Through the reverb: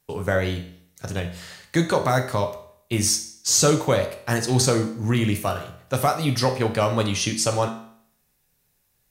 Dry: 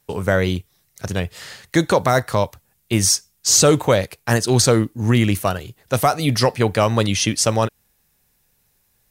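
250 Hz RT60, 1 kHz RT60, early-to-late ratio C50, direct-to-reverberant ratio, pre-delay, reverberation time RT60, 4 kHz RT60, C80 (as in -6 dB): 0.60 s, 0.60 s, 10.0 dB, 4.5 dB, 5 ms, 0.60 s, 0.55 s, 13.0 dB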